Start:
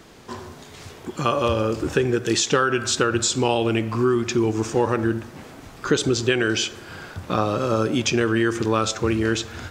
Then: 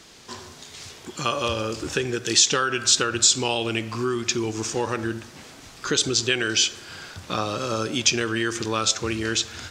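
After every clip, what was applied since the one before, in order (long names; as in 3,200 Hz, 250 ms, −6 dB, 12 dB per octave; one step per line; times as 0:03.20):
parametric band 5,500 Hz +13 dB 2.7 octaves
level −6.5 dB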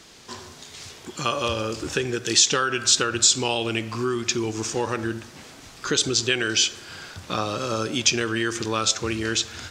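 no processing that can be heard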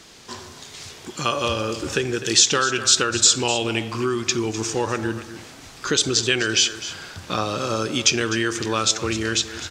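single-tap delay 253 ms −14 dB
level +2 dB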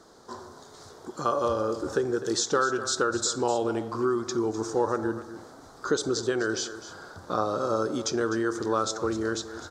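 drawn EQ curve 140 Hz 0 dB, 470 Hz +9 dB, 1,400 Hz +6 dB, 2,600 Hz −20 dB, 3,900 Hz −4 dB
level −9 dB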